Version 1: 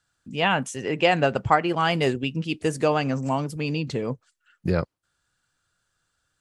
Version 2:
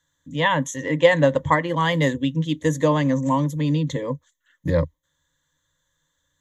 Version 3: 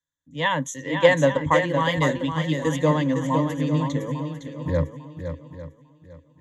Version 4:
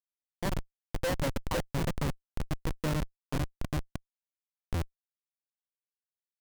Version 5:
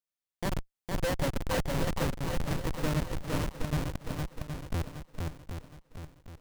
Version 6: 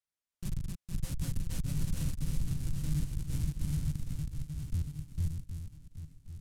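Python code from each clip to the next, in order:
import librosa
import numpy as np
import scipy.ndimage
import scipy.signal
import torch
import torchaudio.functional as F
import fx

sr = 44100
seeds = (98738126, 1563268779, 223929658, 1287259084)

y1 = fx.ripple_eq(x, sr, per_octave=1.1, db=18)
y1 = y1 * librosa.db_to_amplitude(-1.0)
y2 = fx.echo_swing(y1, sr, ms=849, ratio=1.5, feedback_pct=32, wet_db=-6.0)
y2 = fx.band_widen(y2, sr, depth_pct=40)
y2 = y2 * librosa.db_to_amplitude(-3.0)
y3 = fx.schmitt(y2, sr, flips_db=-16.0)
y3 = y3 * librosa.db_to_amplitude(-5.0)
y4 = fx.echo_swing(y3, sr, ms=768, ratio=1.5, feedback_pct=38, wet_db=-3.5)
y5 = fx.reverse_delay(y4, sr, ms=294, wet_db=-3.0)
y5 = scipy.signal.sosfilt(scipy.signal.cheby1(2, 1.0, [130.0, 9300.0], 'bandstop', fs=sr, output='sos'), y5)
y5 = np.interp(np.arange(len(y5)), np.arange(len(y5))[::2], y5[::2])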